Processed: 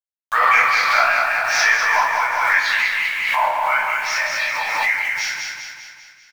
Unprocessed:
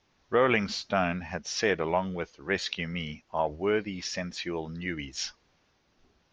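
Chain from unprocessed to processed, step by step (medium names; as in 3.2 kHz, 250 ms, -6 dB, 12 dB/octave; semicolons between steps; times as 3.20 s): single-diode clipper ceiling -15 dBFS; steep high-pass 660 Hz 48 dB/octave; level-controlled noise filter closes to 1.4 kHz, open at -30 dBFS; high-order bell 1.5 kHz +11 dB; waveshaping leveller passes 1; in parallel at +1.5 dB: compression 6:1, threshold -30 dBFS, peak gain reduction 16 dB; on the sum: bit crusher 7-bit; chorus 2.4 Hz, depth 6.9 ms; on a send: feedback delay 197 ms, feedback 54%, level -4 dB; on the sum: simulated room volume 92 m³, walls mixed, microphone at 2.3 m; swell ahead of each attack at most 29 dB/s; trim -6.5 dB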